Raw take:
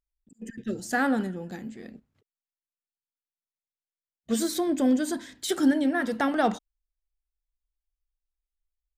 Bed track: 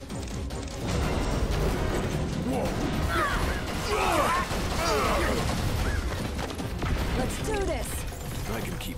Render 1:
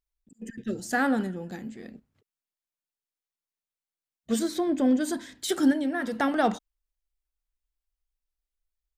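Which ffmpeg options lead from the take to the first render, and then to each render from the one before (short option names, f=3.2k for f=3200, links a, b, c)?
-filter_complex "[0:a]asettb=1/sr,asplit=3[a][b][c];[a]atrim=end=4.394[d];[b]atrim=start=4.39:end=5.01,asetpts=PTS-STARTPTS,afade=t=in:d=0.004:c=qsin,afade=t=out:st=0.616:d=0.004:c=qsin,highshelf=f=5.9k:g=-12[e];[c]atrim=start=5.006[f];[d][e]acrossfade=d=0.004:c1=hsin:c2=qsin[g];[g][f]acrossfade=d=0.004:c1=qsin:c2=hsin,asettb=1/sr,asplit=3[h][i][j];[h]atrim=end=5.724[k];[i]atrim=start=5.72:end=6.2,asetpts=PTS-STARTPTS,afade=t=in:d=0.004:c=qsin,afade=t=out:st=0.476:d=0.004:c=qsin,acompressor=threshold=-30dB:ratio=1.5:attack=3.2:release=140:knee=1:detection=peak[l];[j]atrim=start=6.196[m];[k][l]acrossfade=d=0.004:c1=hsin:c2=qsin[n];[n][m]acrossfade=d=0.004:c1=qsin:c2=hsin"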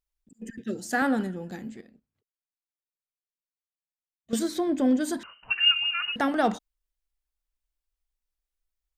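-filter_complex "[0:a]asettb=1/sr,asplit=3[a][b][c];[a]atrim=end=0.594[d];[b]atrim=start=0.59:end=1.02,asetpts=PTS-STARTPTS,afade=t=in:d=0.004:c=qsin,afade=t=out:st=0.426:d=0.004:c=qsin,highpass=150[e];[c]atrim=start=1.016[f];[d][e]acrossfade=d=0.004:c1=hsin:c2=qsin[g];[g][f]acrossfade=d=0.004:c1=qsin:c2=hsin,asettb=1/sr,asplit=3[h][i][j];[h]atrim=end=5.234[k];[i]atrim=start=5.23:end=6.16,asetpts=PTS-STARTPTS,afade=t=in:d=0.004:c=qsin,afade=t=out:st=0.926:d=0.004:c=qsin,lowpass=f=2.6k:t=q:w=0.5098,lowpass=f=2.6k:t=q:w=0.6013,lowpass=f=2.6k:t=q:w=0.9,lowpass=f=2.6k:t=q:w=2.563,afreqshift=-3100[l];[j]atrim=start=6.156[m];[k][l]acrossfade=d=0.004:c1=hsin:c2=qsin[n];[n][m]acrossfade=d=0.004:c1=qsin:c2=hsin,asplit=3[o][p][q];[o]atrim=end=1.812[r];[p]atrim=start=1.808:end=4.332,asetpts=PTS-STARTPTS,volume=-12dB[s];[q]atrim=start=4.328[t];[r][s]acrossfade=d=0.004:c1=hsin:c2=hsin[u];[u][t]acrossfade=d=0.004:c1=hsin:c2=hsin"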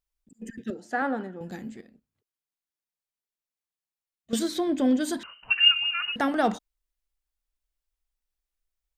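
-filter_complex "[0:a]asettb=1/sr,asplit=3[a][b][c];[a]atrim=end=0.704[d];[b]atrim=start=0.7:end=1.41,asetpts=PTS-STARTPTS,afade=t=in:d=0.004:c=qsin,afade=t=out:st=0.706:d=0.004:c=qsin,bandpass=f=770:t=q:w=0.62[e];[c]atrim=start=1.406[f];[d][e]acrossfade=d=0.004:c1=hsin:c2=qsin[g];[g][f]acrossfade=d=0.004:c1=qsin:c2=hsin,asettb=1/sr,asplit=3[h][i][j];[h]atrim=end=4.334[k];[i]atrim=start=4.33:end=5.68,asetpts=PTS-STARTPTS,afade=t=in:d=0.004:c=qsin,afade=t=out:st=1.346:d=0.004:c=qsin,equalizer=f=3.4k:w=1.5:g=5[l];[j]atrim=start=5.676[m];[k][l]acrossfade=d=0.004:c1=hsin:c2=qsin[n];[n][m]acrossfade=d=0.004:c1=qsin:c2=hsin"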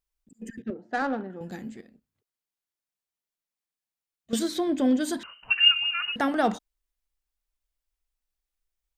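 -filter_complex "[0:a]asettb=1/sr,asplit=3[a][b][c];[a]atrim=end=0.624[d];[b]atrim=start=0.62:end=1.3,asetpts=PTS-STARTPTS,afade=t=in:d=0.004:c=qsin,afade=t=out:st=0.676:d=0.004:c=qsin,adynamicsmooth=sensitivity=3:basefreq=1.2k[e];[c]atrim=start=1.296[f];[d][e]acrossfade=d=0.004:c1=hsin:c2=qsin[g];[g][f]acrossfade=d=0.004:c1=qsin:c2=hsin"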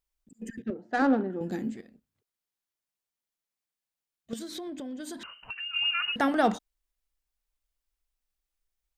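-filter_complex "[0:a]asettb=1/sr,asplit=3[a][b][c];[a]atrim=end=0.994[d];[b]atrim=start=0.99:end=1.76,asetpts=PTS-STARTPTS,afade=t=in:d=0.004:c=qsin,afade=t=out:st=0.766:d=0.004:c=qsin,equalizer=f=310:w=1.2:g=9[e];[c]atrim=start=1.756[f];[d][e]acrossfade=d=0.004:c1=hsin:c2=qsin[g];[g][f]acrossfade=d=0.004:c1=qsin:c2=hsin,asplit=3[h][i][j];[h]afade=t=out:st=4.32:d=0.02[k];[i]acompressor=threshold=-35dB:ratio=10:attack=3.2:release=140:knee=1:detection=peak,afade=t=in:st=4.32:d=0.02,afade=t=out:st=5.73:d=0.02[l];[j]afade=t=in:st=5.73:d=0.02[m];[k][l][m]amix=inputs=3:normalize=0"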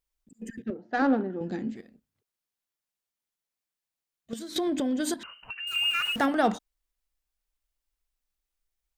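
-filter_complex "[0:a]asettb=1/sr,asplit=3[a][b][c];[a]atrim=end=0.774[d];[b]atrim=start=0.77:end=1.76,asetpts=PTS-STARTPTS,afade=t=in:d=0.004:c=qsin,afade=t=out:st=0.986:d=0.004:c=qsin,lowpass=f=6.1k:w=0.5412,lowpass=f=6.1k:w=1.3066[e];[c]atrim=start=1.756[f];[d][e]acrossfade=d=0.004:c1=hsin:c2=qsin[g];[g][f]acrossfade=d=0.004:c1=qsin:c2=hsin,asettb=1/sr,asplit=3[h][i][j];[h]atrim=end=5.674[k];[i]atrim=start=5.67:end=6.26,asetpts=PTS-STARTPTS,afade=t=in:d=0.004:c=qsin,afade=t=out:st=0.586:d=0.004:c=qsin,aeval=exprs='val(0)+0.5*0.0168*sgn(val(0))':c=same[l];[j]atrim=start=6.256[m];[k][l]acrossfade=d=0.004:c1=hsin:c2=qsin[n];[n][m]acrossfade=d=0.004:c1=qsin:c2=hsin,asplit=3[o][p][q];[o]atrim=end=4.562[r];[p]atrim=start=4.558:end=5.142,asetpts=PTS-STARTPTS,volume=10.5dB[s];[q]atrim=start=5.138[t];[r][s]acrossfade=d=0.004:c1=hsin:c2=hsin[u];[u][t]acrossfade=d=0.004:c1=hsin:c2=hsin"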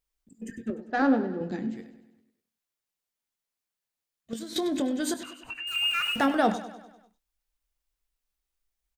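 -filter_complex "[0:a]asplit=2[a][b];[b]adelay=22,volume=-12dB[c];[a][c]amix=inputs=2:normalize=0,aecho=1:1:99|198|297|396|495|594:0.2|0.11|0.0604|0.0332|0.0183|0.01"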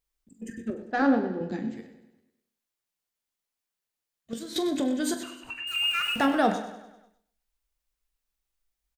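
-filter_complex "[0:a]asplit=2[a][b];[b]adelay=43,volume=-12dB[c];[a][c]amix=inputs=2:normalize=0,aecho=1:1:123|246|369:0.2|0.0479|0.0115"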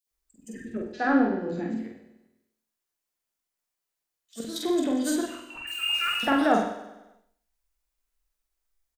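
-filter_complex "[0:a]asplit=2[a][b];[b]adelay=46,volume=-3dB[c];[a][c]amix=inputs=2:normalize=0,acrossover=split=150|3200[d][e][f];[e]adelay=70[g];[d]adelay=110[h];[h][g][f]amix=inputs=3:normalize=0"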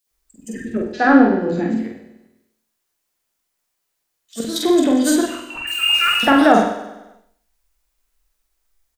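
-af "volume=10.5dB,alimiter=limit=-1dB:level=0:latency=1"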